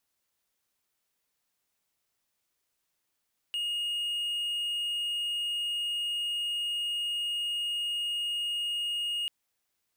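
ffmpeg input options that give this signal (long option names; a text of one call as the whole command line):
ffmpeg -f lavfi -i "aevalsrc='0.0447*(1-4*abs(mod(2860*t+0.25,1)-0.5))':duration=5.74:sample_rate=44100" out.wav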